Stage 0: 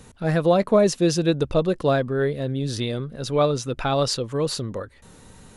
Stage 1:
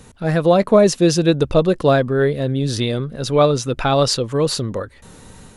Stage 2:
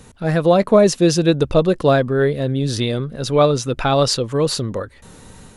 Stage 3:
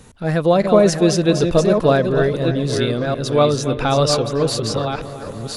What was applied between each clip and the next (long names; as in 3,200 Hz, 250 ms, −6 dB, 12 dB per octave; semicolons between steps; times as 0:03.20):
automatic gain control gain up to 3 dB; level +3 dB
no processing that can be heard
delay that plays each chunk backwards 629 ms, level −6 dB; delay with a low-pass on its return 282 ms, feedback 68%, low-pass 2,800 Hz, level −13 dB; level −1 dB